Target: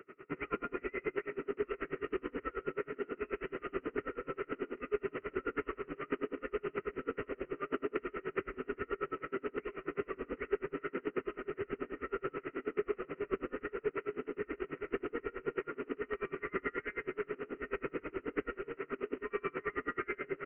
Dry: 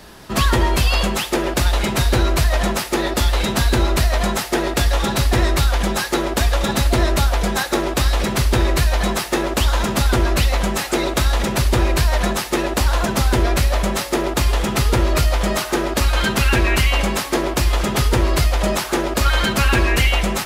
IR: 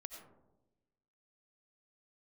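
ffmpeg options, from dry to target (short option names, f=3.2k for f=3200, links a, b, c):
-filter_complex "[0:a]asplit=3[a][b][c];[a]bandpass=f=530:t=q:w=8,volume=0dB[d];[b]bandpass=f=1.84k:t=q:w=8,volume=-6dB[e];[c]bandpass=f=2.48k:t=q:w=8,volume=-9dB[f];[d][e][f]amix=inputs=3:normalize=0,aresample=8000,acrusher=bits=3:mode=log:mix=0:aa=0.000001,aresample=44100,asetrate=33038,aresample=44100,atempo=1.33484,acompressor=threshold=-37dB:ratio=6[g];[1:a]atrim=start_sample=2205[h];[g][h]afir=irnorm=-1:irlink=0,aeval=exprs='val(0)*pow(10,-31*(0.5-0.5*cos(2*PI*9.3*n/s))/20)':c=same,volume=12dB"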